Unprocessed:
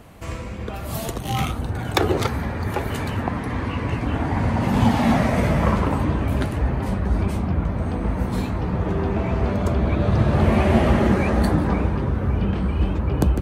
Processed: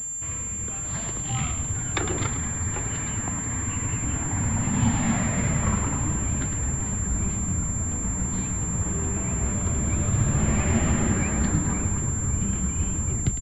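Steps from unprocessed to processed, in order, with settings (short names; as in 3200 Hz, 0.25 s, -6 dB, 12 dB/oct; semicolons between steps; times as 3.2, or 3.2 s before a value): tape stop at the end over 0.31 s; HPF 64 Hz; bell 560 Hz -11.5 dB 2 oct; reverse; upward compressor, threshold -37 dBFS; reverse; flange 0.96 Hz, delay 5.2 ms, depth 4.1 ms, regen -73%; on a send: frequency-shifting echo 0.106 s, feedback 54%, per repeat -63 Hz, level -9.5 dB; on the sum: pulse-width modulation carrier 7300 Hz; gain +2.5 dB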